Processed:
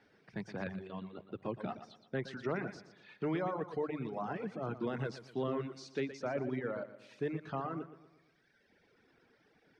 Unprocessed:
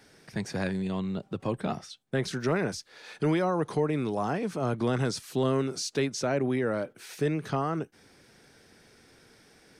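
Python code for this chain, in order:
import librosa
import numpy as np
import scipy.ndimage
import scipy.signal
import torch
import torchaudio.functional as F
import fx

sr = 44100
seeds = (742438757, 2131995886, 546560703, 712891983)

p1 = scipy.signal.sosfilt(scipy.signal.butter(2, 2900.0, 'lowpass', fs=sr, output='sos'), x)
p2 = fx.low_shelf(p1, sr, hz=62.0, db=-8.5)
p3 = fx.hum_notches(p2, sr, base_hz=50, count=3)
p4 = p3 + fx.echo_feedback(p3, sr, ms=118, feedback_pct=51, wet_db=-6.0, dry=0)
p5 = fx.dereverb_blind(p4, sr, rt60_s=1.4)
y = p5 * 10.0 ** (-7.5 / 20.0)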